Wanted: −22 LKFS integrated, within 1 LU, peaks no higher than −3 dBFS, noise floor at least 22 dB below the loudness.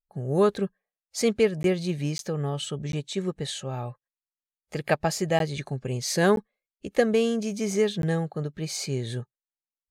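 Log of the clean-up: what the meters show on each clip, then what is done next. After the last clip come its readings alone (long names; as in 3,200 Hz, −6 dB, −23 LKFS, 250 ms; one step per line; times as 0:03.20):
number of dropouts 6; longest dropout 12 ms; integrated loudness −27.0 LKFS; sample peak −6.5 dBFS; target loudness −22.0 LKFS
→ repair the gap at 0:01.63/0:02.18/0:02.92/0:05.39/0:06.36/0:08.02, 12 ms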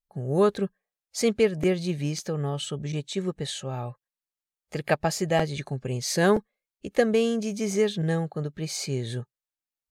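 number of dropouts 0; integrated loudness −27.0 LKFS; sample peak −6.5 dBFS; target loudness −22.0 LKFS
→ level +5 dB
brickwall limiter −3 dBFS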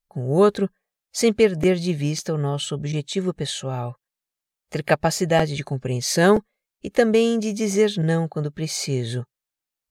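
integrated loudness −22.0 LKFS; sample peak −3.0 dBFS; background noise floor −88 dBFS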